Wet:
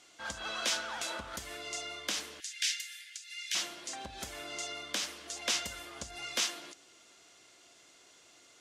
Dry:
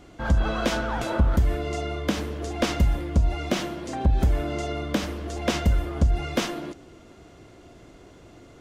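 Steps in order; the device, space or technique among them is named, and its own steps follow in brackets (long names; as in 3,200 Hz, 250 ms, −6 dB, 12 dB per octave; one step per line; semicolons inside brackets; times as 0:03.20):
piezo pickup straight into a mixer (low-pass filter 8,000 Hz 12 dB per octave; first difference)
0:02.40–0:03.55: Butterworth high-pass 1,600 Hz 72 dB per octave
level +6.5 dB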